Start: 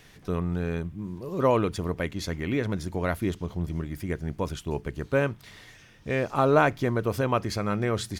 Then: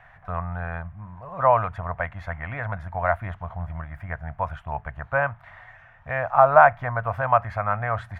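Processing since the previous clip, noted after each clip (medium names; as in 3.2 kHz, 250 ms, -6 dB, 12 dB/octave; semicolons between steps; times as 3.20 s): FFT filter 110 Hz 0 dB, 380 Hz -26 dB, 680 Hz +11 dB, 960 Hz +7 dB, 1.7 kHz +6 dB, 4.9 kHz -27 dB; trim +1.5 dB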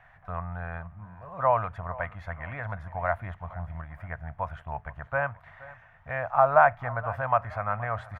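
feedback delay 473 ms, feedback 43%, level -19.5 dB; trim -5 dB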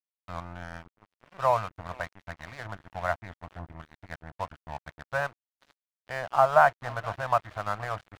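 crossover distortion -38 dBFS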